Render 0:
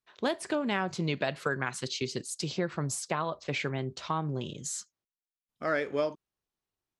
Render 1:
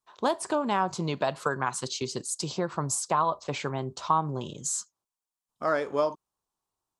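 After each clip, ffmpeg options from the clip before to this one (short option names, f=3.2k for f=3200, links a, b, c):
-af "equalizer=f=1k:t=o:w=1:g=12,equalizer=f=2k:t=o:w=1:g=-8,equalizer=f=8k:t=o:w=1:g=7"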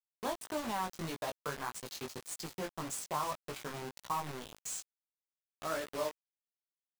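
-af "acrusher=bits=4:mix=0:aa=0.000001,flanger=delay=16.5:depth=4.2:speed=1.7,volume=-8dB"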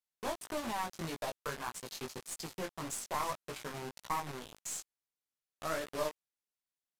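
-af "aresample=32000,aresample=44100,aeval=exprs='(tanh(20*val(0)+0.7)-tanh(0.7))/20':c=same,volume=4dB"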